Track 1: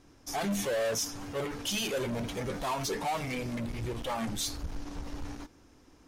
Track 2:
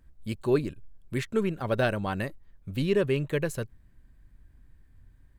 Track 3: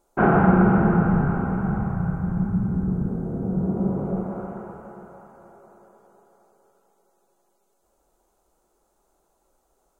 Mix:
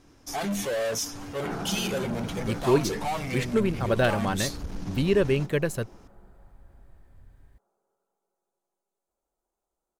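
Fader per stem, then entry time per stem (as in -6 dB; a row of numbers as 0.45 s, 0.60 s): +2.0 dB, +2.5 dB, -17.5 dB; 0.00 s, 2.20 s, 1.25 s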